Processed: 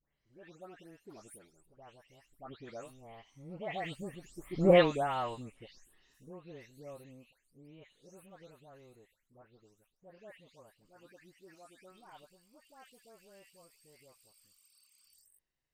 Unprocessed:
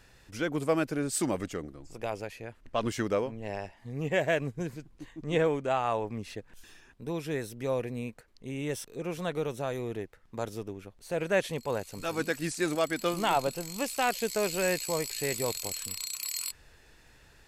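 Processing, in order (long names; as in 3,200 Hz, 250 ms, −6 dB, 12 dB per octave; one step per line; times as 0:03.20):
every frequency bin delayed by itself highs late, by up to 375 ms
source passing by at 0:05.21, 11 m/s, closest 1.8 metres
speed change +11%
level +6 dB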